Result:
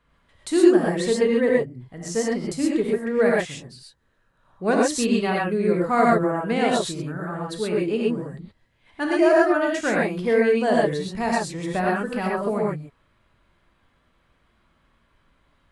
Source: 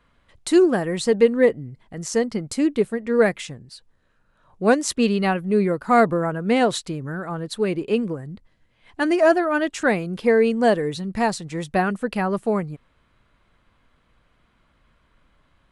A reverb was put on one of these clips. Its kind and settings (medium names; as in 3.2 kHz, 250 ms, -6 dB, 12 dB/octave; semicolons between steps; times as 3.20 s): gated-style reverb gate 150 ms rising, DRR -3.5 dB; trim -5.5 dB